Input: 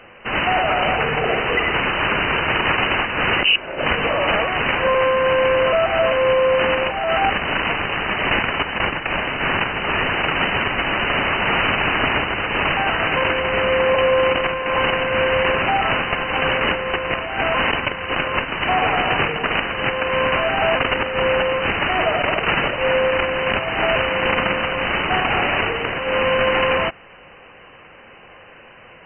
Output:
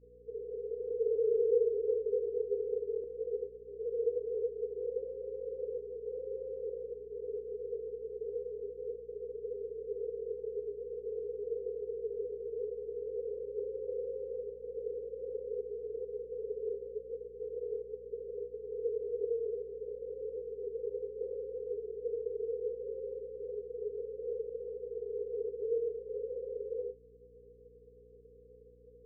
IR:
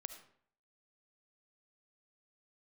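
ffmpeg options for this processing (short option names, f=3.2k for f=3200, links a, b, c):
-filter_complex "[0:a]asuperpass=centerf=450:order=20:qfactor=4.5,asettb=1/sr,asplit=3[a][b][c];[a]atrim=end=0.554[d];[b]atrim=start=0.55:end=3.04,asetpts=PTS-STARTPTS,afade=t=in:d=0.004:c=qsin,afade=t=out:st=2.486:d=0.004:c=qsin,aecho=1:1:360|612|788.4|911.9|998.3:0.631|0.398|0.251|0.158|0.1,atrim=end_sample=109809[e];[c]atrim=start=3.036[f];[d][e]acrossfade=d=0.004:c1=hsin:c2=qsin[g];[g][f]acrossfade=d=0.004:c1=qsin:c2=hsin,aeval=exprs='val(0)+0.00112*(sin(2*PI*60*n/s)+sin(2*PI*2*60*n/s)/2+sin(2*PI*3*60*n/s)/3+sin(2*PI*4*60*n/s)/4+sin(2*PI*5*60*n/s)/5)':c=same,volume=-3.5dB"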